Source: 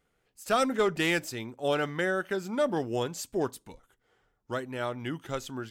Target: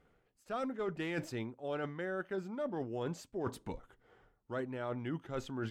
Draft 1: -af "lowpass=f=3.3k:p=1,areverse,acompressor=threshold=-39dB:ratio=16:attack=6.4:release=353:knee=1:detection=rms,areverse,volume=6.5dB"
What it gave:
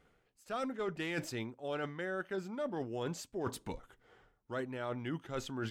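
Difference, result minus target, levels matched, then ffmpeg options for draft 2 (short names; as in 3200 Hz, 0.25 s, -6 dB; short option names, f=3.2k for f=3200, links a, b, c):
4000 Hz band +4.5 dB
-af "lowpass=f=1.4k:p=1,areverse,acompressor=threshold=-39dB:ratio=16:attack=6.4:release=353:knee=1:detection=rms,areverse,volume=6.5dB"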